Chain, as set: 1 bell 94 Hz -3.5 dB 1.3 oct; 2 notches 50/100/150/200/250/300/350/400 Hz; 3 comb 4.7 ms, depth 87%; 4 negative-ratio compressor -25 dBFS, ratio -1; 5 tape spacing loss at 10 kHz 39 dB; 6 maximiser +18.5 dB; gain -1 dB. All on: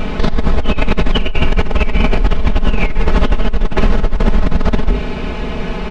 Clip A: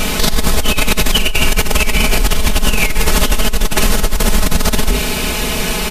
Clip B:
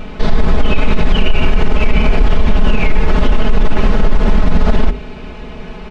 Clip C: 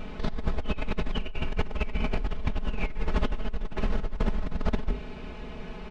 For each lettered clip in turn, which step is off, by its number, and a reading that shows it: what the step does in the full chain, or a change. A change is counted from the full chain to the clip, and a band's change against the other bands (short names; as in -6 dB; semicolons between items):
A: 5, 4 kHz band +10.5 dB; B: 4, crest factor change -3.0 dB; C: 6, crest factor change +6.5 dB